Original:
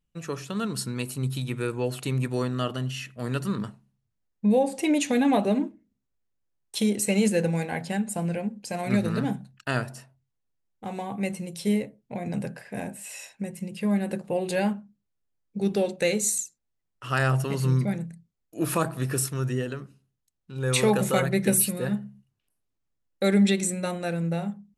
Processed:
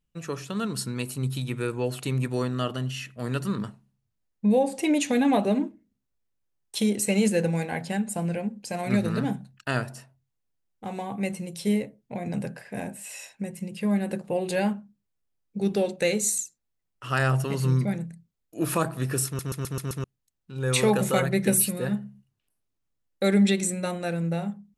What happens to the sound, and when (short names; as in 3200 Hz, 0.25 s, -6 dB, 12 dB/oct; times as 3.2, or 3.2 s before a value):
19.26 stutter in place 0.13 s, 6 plays